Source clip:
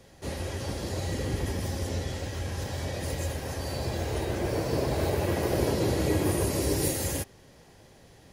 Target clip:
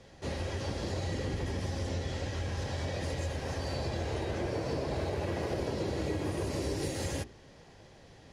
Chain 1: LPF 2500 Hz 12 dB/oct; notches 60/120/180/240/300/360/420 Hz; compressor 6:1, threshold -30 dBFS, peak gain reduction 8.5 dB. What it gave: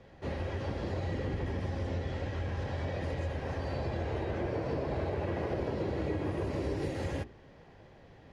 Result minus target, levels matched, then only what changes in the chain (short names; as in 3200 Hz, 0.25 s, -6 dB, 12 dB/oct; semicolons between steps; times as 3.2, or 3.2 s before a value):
8000 Hz band -14.0 dB
change: LPF 6100 Hz 12 dB/oct